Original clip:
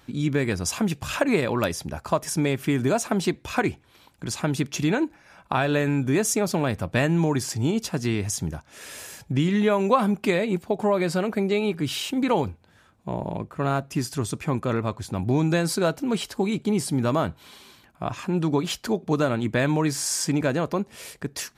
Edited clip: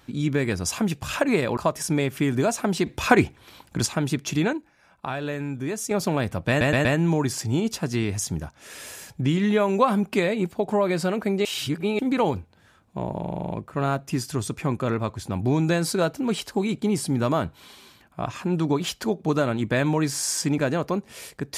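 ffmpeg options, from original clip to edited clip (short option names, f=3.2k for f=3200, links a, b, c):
-filter_complex "[0:a]asplit=18[a][b][c][d][e][f][g][h][i][j][k][l][m][n][o][p][q][r];[a]atrim=end=1.572[s];[b]atrim=start=2.038:end=3.332[t];[c]atrim=start=3.328:end=4.332,asetpts=PTS-STARTPTS,volume=6.5dB[u];[d]atrim=start=4.328:end=5.002[v];[e]atrim=start=4.998:end=6.382,asetpts=PTS-STARTPTS,volume=-7dB[w];[f]atrim=start=6.378:end=7.082[x];[g]atrim=start=6.958:end=7.082[y];[h]atrim=start=6.958:end=7.082[z];[i]atrim=start=6.958:end=11.562[aa];[j]atrim=start=11.558:end=12.102,asetpts=PTS-STARTPTS,areverse[ab];[k]atrim=start=12.098:end=13.362[ac];[l]atrim=start=13.318:end=13.362[ad];[m]atrim=start=13.318:end=13.362[ae];[n]atrim=start=13.318:end=13.362[af];[o]atrim=start=13.318:end=13.362[ag];[p]atrim=start=13.318:end=13.362[ah];[q]atrim=start=13.318:end=13.362[ai];[r]atrim=start=13.318[aj];[s][t]acrossfade=d=0.004:c1=hsin:c2=hsin[ak];[ak][u]acrossfade=d=0.004:c1=hsin:c2=hsin[al];[al][v]acrossfade=d=0.004:c1=hsin:c2=hsin[am];[am][w]acrossfade=d=0.004:c1=hsin:c2=hsin[an];[an][x]acrossfade=d=0.004:c1=hsin:c2=hsin[ao];[ao][y]acrossfade=d=0.004:c1=hsin:c2=hsin[ap];[ap][z]acrossfade=d=0.004:c1=hsin:c2=hsin[aq];[aq][aa]acrossfade=d=0.004:c1=hsin:c2=hsin[ar];[ar][ab]acrossfade=d=0.004:c1=hsin:c2=hsin[as];[as][ac]acrossfade=d=0.004:c1=hsin:c2=hsin[at];[at][ad]acrossfade=d=0.004:c1=hsin:c2=hsin[au];[au][ae]acrossfade=d=0.004:c1=hsin:c2=hsin[av];[av][af]acrossfade=d=0.004:c1=hsin:c2=hsin[aw];[aw][ag]acrossfade=d=0.004:c1=hsin:c2=hsin[ax];[ax][ah]acrossfade=d=0.004:c1=hsin:c2=hsin[ay];[ay][ai]acrossfade=d=0.004:c1=hsin:c2=hsin[az];[az][aj]acrossfade=d=0.004:c1=hsin:c2=hsin"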